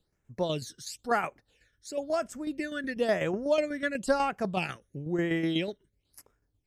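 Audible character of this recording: tremolo saw down 8.1 Hz, depth 55%; phasing stages 12, 0.99 Hz, lowest notch 780–4200 Hz

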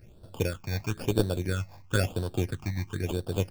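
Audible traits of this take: tremolo triangle 3 Hz, depth 40%; aliases and images of a low sample rate 2 kHz, jitter 0%; phasing stages 8, 1 Hz, lowest notch 400–2200 Hz

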